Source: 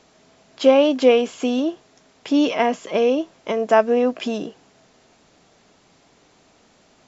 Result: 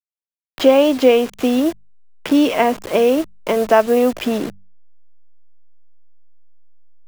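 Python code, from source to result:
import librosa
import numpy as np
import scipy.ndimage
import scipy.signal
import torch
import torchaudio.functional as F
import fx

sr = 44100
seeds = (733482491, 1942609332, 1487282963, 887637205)

y = fx.delta_hold(x, sr, step_db=-31.0)
y = fx.hum_notches(y, sr, base_hz=50, count=4)
y = fx.band_squash(y, sr, depth_pct=40)
y = y * 10.0 ** (3.5 / 20.0)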